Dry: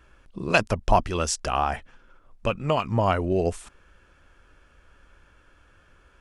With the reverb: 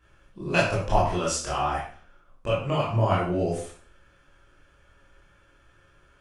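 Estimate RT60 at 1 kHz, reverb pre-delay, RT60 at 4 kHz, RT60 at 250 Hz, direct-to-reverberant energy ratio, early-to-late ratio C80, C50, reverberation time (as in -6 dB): 0.45 s, 14 ms, 0.45 s, 0.45 s, -7.5 dB, 7.5 dB, 3.0 dB, 0.45 s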